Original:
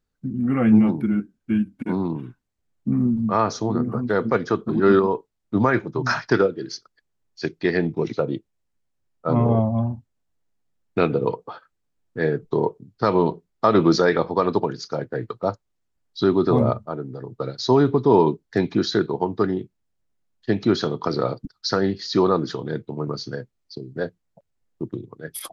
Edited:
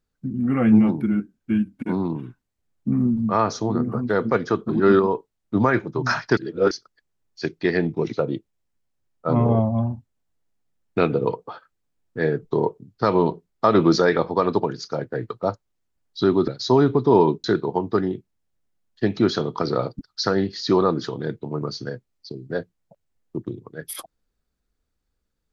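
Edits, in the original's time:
0:06.37–0:06.71: reverse
0:16.48–0:17.47: remove
0:18.43–0:18.90: remove

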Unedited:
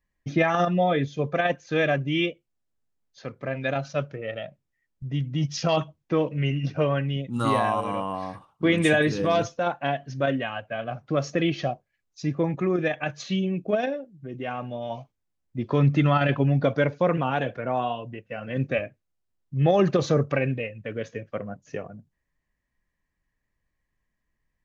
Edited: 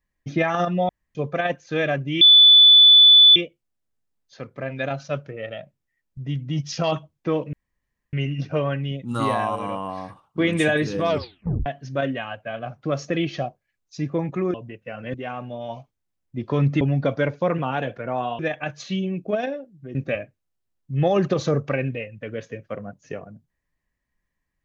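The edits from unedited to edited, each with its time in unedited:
0:00.89–0:01.15: fill with room tone
0:02.21: insert tone 3,480 Hz −7.5 dBFS 1.15 s
0:06.38: splice in room tone 0.60 s
0:09.34: tape stop 0.57 s
0:12.79–0:14.35: swap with 0:17.98–0:18.58
0:16.02–0:16.40: remove

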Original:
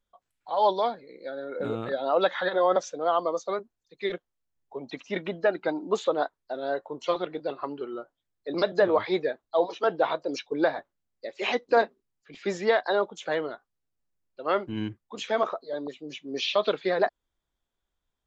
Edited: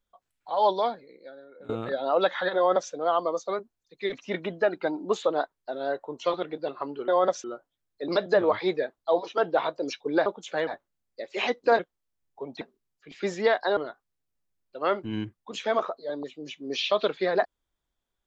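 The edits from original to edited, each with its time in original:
0:00.93–0:01.69: fade out quadratic, to −18 dB
0:02.56–0:02.92: duplicate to 0:07.90
0:04.13–0:04.95: move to 0:11.84
0:13.00–0:13.41: move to 0:10.72

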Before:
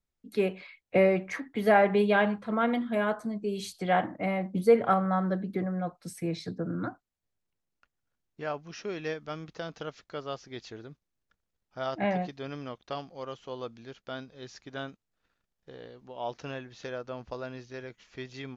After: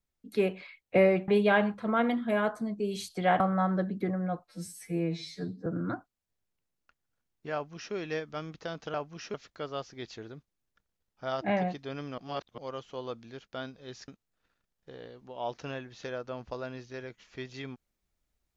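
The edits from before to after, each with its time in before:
0:01.28–0:01.92: remove
0:04.04–0:04.93: remove
0:06.01–0:06.60: time-stretch 2×
0:08.48–0:08.88: duplicate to 0:09.88
0:12.72–0:13.12: reverse
0:14.62–0:14.88: remove

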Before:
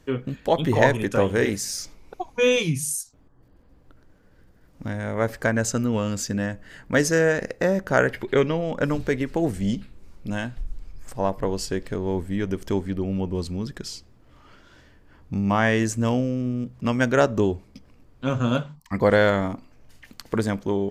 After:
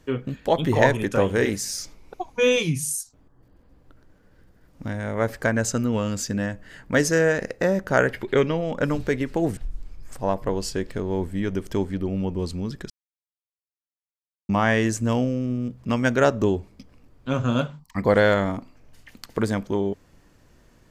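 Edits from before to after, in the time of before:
0:09.57–0:10.53: remove
0:13.86–0:15.45: silence

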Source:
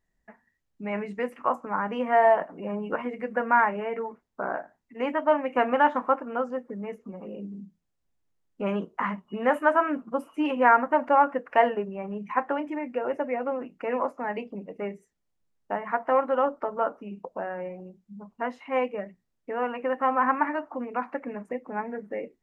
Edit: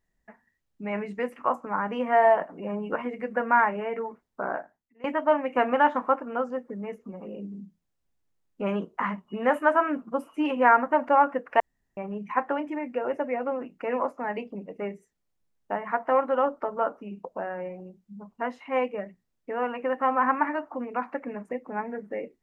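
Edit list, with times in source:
0:04.57–0:05.04: fade out quadratic, to −20.5 dB
0:11.60–0:11.97: fill with room tone

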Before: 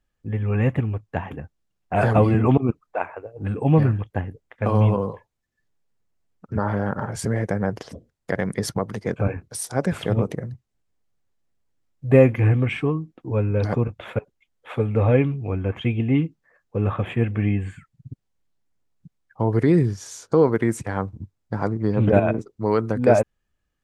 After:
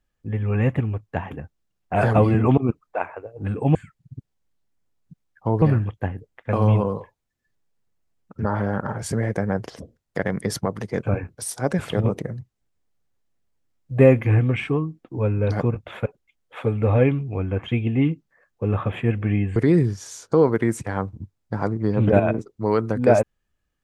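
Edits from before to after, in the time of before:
0:17.69–0:19.56: move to 0:03.75

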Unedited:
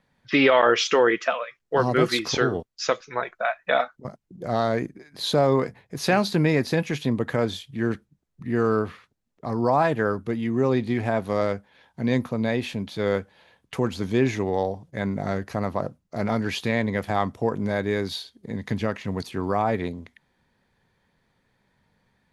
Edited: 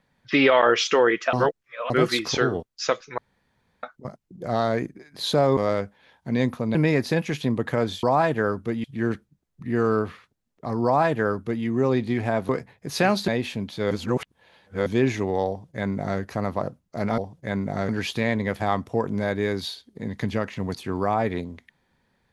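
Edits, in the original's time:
0:01.33–0:01.90: reverse
0:03.18–0:03.83: fill with room tone
0:05.57–0:06.36: swap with 0:11.29–0:12.47
0:09.64–0:10.45: duplicate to 0:07.64
0:13.10–0:14.05: reverse
0:14.68–0:15.39: duplicate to 0:16.37

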